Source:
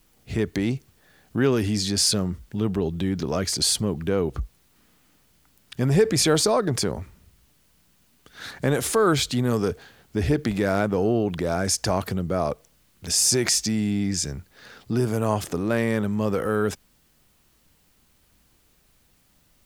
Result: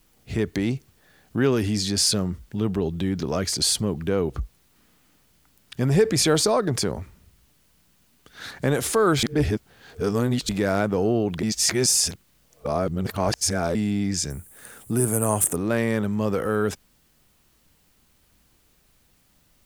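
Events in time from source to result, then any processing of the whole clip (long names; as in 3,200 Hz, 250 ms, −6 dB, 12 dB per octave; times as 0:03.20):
0:09.23–0:10.49: reverse
0:11.43–0:13.75: reverse
0:14.30–0:15.56: high shelf with overshoot 6,700 Hz +13 dB, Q 3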